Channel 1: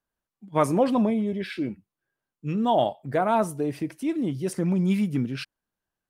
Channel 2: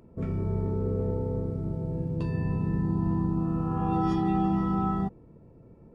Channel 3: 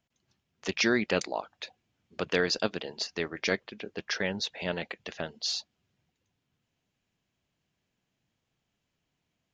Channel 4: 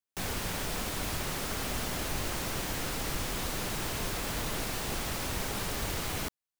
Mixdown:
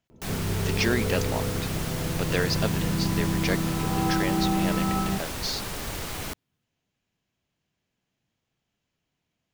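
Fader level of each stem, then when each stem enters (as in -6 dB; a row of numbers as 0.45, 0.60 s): off, +0.5 dB, 0.0 dB, +0.5 dB; off, 0.10 s, 0.00 s, 0.05 s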